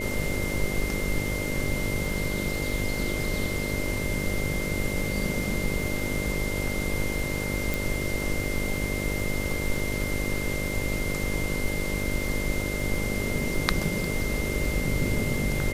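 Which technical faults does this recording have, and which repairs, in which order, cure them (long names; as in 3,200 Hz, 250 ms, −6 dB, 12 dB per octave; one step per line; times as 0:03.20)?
mains buzz 50 Hz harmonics 12 −32 dBFS
surface crackle 30 per second −34 dBFS
whistle 2,100 Hz −33 dBFS
0:07.74: click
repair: click removal
notch filter 2,100 Hz, Q 30
hum removal 50 Hz, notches 12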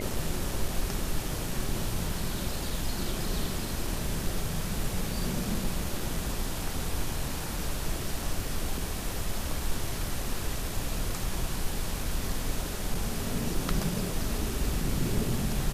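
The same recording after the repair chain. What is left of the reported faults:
none of them is left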